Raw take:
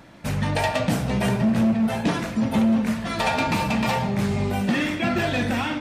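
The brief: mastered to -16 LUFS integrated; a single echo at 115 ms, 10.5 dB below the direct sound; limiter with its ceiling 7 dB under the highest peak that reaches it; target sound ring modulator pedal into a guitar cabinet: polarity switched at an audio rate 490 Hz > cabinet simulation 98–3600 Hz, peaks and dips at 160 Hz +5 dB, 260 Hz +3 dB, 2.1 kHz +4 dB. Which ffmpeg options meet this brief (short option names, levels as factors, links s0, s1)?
-af "alimiter=limit=0.119:level=0:latency=1,aecho=1:1:115:0.299,aeval=exprs='val(0)*sgn(sin(2*PI*490*n/s))':c=same,highpass=98,equalizer=f=160:t=q:w=4:g=5,equalizer=f=260:t=q:w=4:g=3,equalizer=f=2100:t=q:w=4:g=4,lowpass=f=3600:w=0.5412,lowpass=f=3600:w=1.3066,volume=2.66"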